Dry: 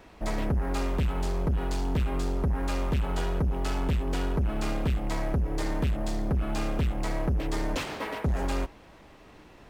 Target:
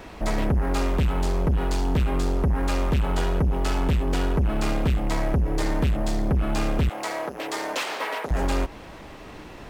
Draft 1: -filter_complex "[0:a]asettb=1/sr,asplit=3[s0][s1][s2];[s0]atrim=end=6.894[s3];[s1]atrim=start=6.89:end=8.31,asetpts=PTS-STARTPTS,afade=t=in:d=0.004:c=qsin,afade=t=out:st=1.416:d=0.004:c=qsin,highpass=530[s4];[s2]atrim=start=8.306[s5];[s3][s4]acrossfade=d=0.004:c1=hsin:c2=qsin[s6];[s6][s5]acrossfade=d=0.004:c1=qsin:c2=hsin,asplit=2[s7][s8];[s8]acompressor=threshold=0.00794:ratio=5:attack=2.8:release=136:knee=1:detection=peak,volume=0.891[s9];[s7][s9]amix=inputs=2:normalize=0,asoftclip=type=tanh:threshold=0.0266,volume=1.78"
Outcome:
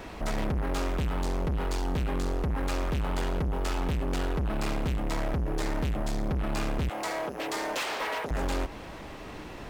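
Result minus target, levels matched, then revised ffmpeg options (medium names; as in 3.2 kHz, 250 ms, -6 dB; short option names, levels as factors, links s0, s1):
saturation: distortion +14 dB
-filter_complex "[0:a]asettb=1/sr,asplit=3[s0][s1][s2];[s0]atrim=end=6.894[s3];[s1]atrim=start=6.89:end=8.31,asetpts=PTS-STARTPTS,afade=t=in:d=0.004:c=qsin,afade=t=out:st=1.416:d=0.004:c=qsin,highpass=530[s4];[s2]atrim=start=8.306[s5];[s3][s4]acrossfade=d=0.004:c1=hsin:c2=qsin[s6];[s6][s5]acrossfade=d=0.004:c1=qsin:c2=hsin,asplit=2[s7][s8];[s8]acompressor=threshold=0.00794:ratio=5:attack=2.8:release=136:knee=1:detection=peak,volume=0.891[s9];[s7][s9]amix=inputs=2:normalize=0,asoftclip=type=tanh:threshold=0.0944,volume=1.78"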